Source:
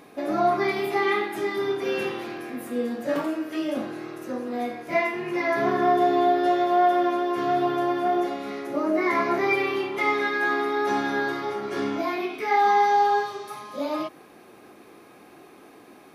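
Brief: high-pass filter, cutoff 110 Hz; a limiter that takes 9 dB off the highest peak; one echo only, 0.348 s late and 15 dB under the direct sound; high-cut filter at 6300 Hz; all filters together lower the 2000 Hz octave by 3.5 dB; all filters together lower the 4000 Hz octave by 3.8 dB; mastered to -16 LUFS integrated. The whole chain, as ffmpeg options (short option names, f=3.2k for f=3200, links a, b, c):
-af "highpass=110,lowpass=6.3k,equalizer=f=2k:t=o:g=-3.5,equalizer=f=4k:t=o:g=-3,alimiter=limit=-20.5dB:level=0:latency=1,aecho=1:1:348:0.178,volume=13dB"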